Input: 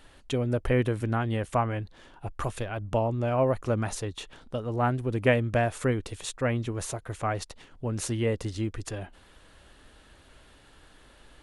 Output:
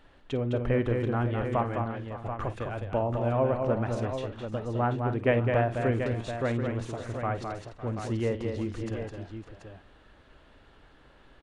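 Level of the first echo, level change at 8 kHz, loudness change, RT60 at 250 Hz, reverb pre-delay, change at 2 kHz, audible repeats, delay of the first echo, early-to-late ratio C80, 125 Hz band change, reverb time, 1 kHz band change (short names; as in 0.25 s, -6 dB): -14.0 dB, under -10 dB, -0.5 dB, none, none, -2.5 dB, 6, 51 ms, none, -0.5 dB, none, -0.5 dB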